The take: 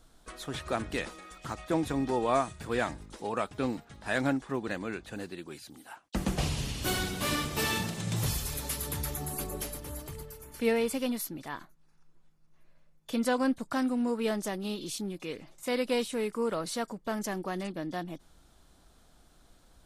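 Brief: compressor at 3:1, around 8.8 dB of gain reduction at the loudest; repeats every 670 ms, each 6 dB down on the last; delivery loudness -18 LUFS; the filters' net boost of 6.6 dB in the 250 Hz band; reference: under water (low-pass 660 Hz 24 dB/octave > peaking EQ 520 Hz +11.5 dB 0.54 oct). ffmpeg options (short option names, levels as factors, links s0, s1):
-af "equalizer=f=250:t=o:g=6.5,acompressor=threshold=0.0282:ratio=3,lowpass=f=660:w=0.5412,lowpass=f=660:w=1.3066,equalizer=f=520:t=o:w=0.54:g=11.5,aecho=1:1:670|1340|2010|2680|3350|4020:0.501|0.251|0.125|0.0626|0.0313|0.0157,volume=5.01"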